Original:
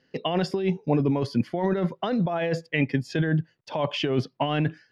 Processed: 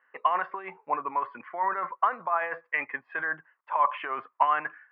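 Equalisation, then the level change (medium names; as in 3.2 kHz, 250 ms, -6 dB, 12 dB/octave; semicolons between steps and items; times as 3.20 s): resonant high-pass 1.1 kHz, resonance Q 5.8; steep low-pass 2.2 kHz 36 dB/octave; 0.0 dB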